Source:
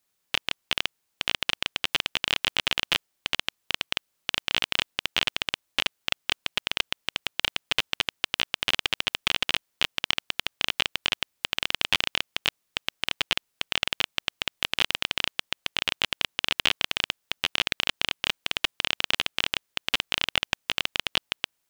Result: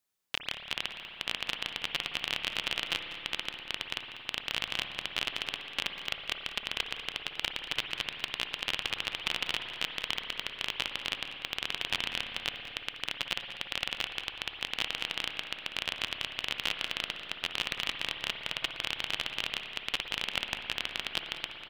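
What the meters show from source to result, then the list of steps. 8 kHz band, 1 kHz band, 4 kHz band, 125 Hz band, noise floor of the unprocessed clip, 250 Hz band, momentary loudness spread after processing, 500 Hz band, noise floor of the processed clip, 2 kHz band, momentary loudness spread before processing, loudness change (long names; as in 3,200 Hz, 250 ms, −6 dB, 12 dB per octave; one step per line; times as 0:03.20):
−7.5 dB, −6.0 dB, −6.5 dB, −6.0 dB, −77 dBFS, −6.0 dB, 4 LU, −6.0 dB, −47 dBFS, −6.0 dB, 4 LU, −6.5 dB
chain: on a send: single-tap delay 194 ms −14.5 dB
on the sum: spring reverb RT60 3.6 s, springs 56 ms, chirp 70 ms, DRR 5 dB
level −7.5 dB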